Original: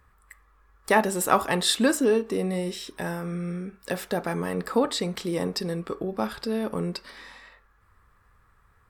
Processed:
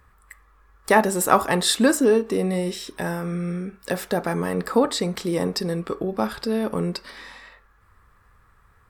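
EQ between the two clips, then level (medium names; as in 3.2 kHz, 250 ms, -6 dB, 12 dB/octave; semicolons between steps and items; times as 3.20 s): dynamic bell 3 kHz, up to -4 dB, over -43 dBFS, Q 1.6; +4.0 dB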